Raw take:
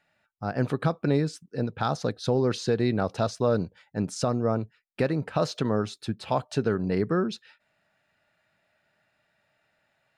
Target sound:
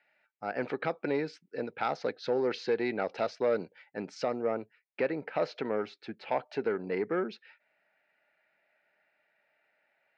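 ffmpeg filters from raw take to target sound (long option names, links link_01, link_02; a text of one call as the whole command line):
ffmpeg -i in.wav -af "asetnsamples=nb_out_samples=441:pad=0,asendcmd='4.42 highshelf g -12',highshelf=frequency=2800:gain=-6,asoftclip=type=tanh:threshold=-14.5dB,highpass=440,equalizer=frequency=660:width_type=q:width=4:gain=-3,equalizer=frequency=1100:width_type=q:width=4:gain=-9,equalizer=frequency=2200:width_type=q:width=4:gain=7,equalizer=frequency=3600:width_type=q:width=4:gain=-5,lowpass=frequency=4700:width=0.5412,lowpass=frequency=4700:width=1.3066,volume=1.5dB" out.wav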